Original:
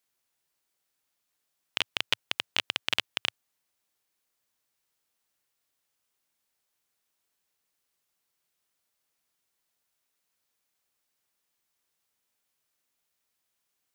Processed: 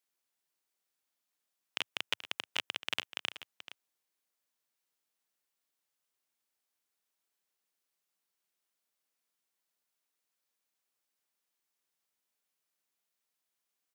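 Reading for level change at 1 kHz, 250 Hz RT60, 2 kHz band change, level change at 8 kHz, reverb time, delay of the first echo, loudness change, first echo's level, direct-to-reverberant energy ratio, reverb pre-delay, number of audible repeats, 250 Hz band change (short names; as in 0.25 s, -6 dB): -5.5 dB, none, -6.0 dB, -6.0 dB, none, 0.432 s, -7.0 dB, -13.5 dB, none, none, 1, -6.5 dB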